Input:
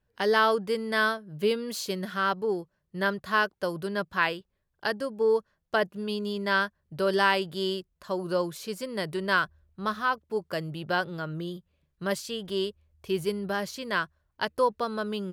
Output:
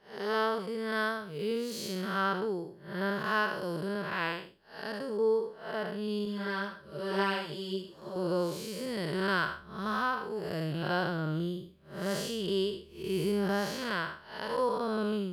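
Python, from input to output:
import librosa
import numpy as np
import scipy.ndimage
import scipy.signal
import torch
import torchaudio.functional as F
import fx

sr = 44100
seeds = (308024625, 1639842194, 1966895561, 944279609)

y = fx.spec_blur(x, sr, span_ms=213.0)
y = fx.rider(y, sr, range_db=10, speed_s=2.0)
y = fx.ensemble(y, sr, at=(6.25, 8.16))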